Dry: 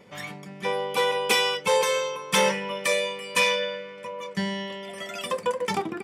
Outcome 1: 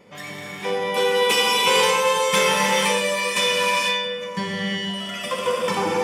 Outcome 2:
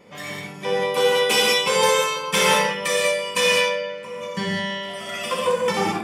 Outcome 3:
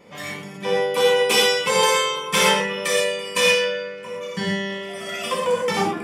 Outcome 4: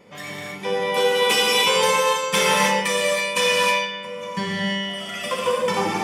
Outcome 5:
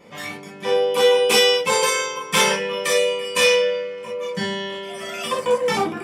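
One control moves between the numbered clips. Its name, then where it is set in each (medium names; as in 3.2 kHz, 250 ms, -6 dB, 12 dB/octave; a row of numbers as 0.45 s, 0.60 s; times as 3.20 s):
gated-style reverb, gate: 520 ms, 230 ms, 150 ms, 350 ms, 80 ms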